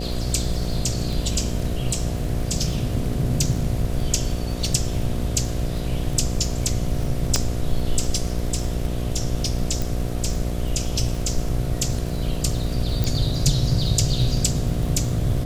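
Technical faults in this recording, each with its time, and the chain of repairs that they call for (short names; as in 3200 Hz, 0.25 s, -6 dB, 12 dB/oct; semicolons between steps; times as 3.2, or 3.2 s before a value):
buzz 60 Hz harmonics 12 -27 dBFS
crackle 51/s -28 dBFS
7.36 pop -5 dBFS
9.82 pop
13.04 pop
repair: de-click; de-hum 60 Hz, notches 12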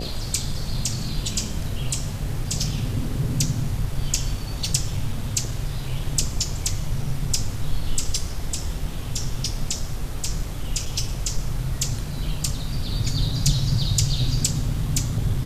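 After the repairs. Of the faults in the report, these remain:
7.36 pop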